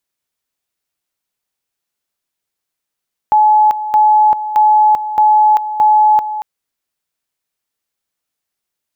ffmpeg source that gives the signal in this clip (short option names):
-f lavfi -i "aevalsrc='pow(10,(-6-12*gte(mod(t,0.62),0.39))/20)*sin(2*PI*853*t)':d=3.1:s=44100"